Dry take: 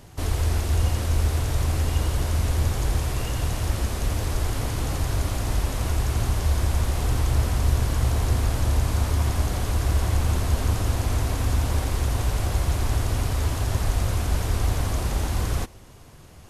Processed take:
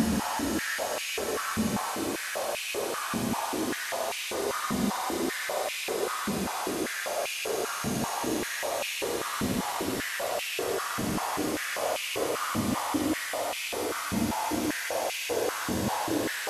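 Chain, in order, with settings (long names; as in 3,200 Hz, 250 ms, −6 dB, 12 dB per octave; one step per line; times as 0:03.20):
extreme stretch with random phases 42×, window 0.10 s, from 0:03.83
high-pass on a step sequencer 5.1 Hz 210–2,500 Hz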